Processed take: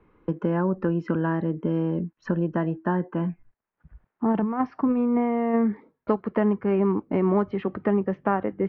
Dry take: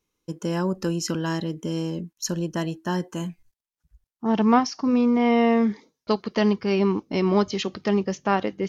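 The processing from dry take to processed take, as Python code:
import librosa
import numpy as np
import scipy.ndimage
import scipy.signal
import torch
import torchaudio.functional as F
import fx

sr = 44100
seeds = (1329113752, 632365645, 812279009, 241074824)

y = fx.over_compress(x, sr, threshold_db=-21.0, ratio=-0.5, at=(4.32, 5.53), fade=0.02)
y = scipy.signal.sosfilt(scipy.signal.butter(4, 1800.0, 'lowpass', fs=sr, output='sos'), y)
y = fx.band_squash(y, sr, depth_pct=70)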